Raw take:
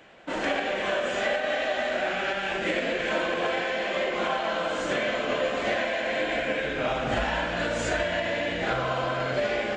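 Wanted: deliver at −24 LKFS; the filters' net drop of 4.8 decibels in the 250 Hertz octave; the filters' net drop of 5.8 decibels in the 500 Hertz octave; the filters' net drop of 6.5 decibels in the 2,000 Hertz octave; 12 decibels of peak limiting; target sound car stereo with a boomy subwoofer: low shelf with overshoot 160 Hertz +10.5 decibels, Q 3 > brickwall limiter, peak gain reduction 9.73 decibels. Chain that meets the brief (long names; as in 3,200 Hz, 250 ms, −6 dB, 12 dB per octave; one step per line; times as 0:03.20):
parametric band 250 Hz −3 dB
parametric band 500 Hz −5 dB
parametric band 2,000 Hz −8 dB
brickwall limiter −29.5 dBFS
low shelf with overshoot 160 Hz +10.5 dB, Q 3
level +14.5 dB
brickwall limiter −15 dBFS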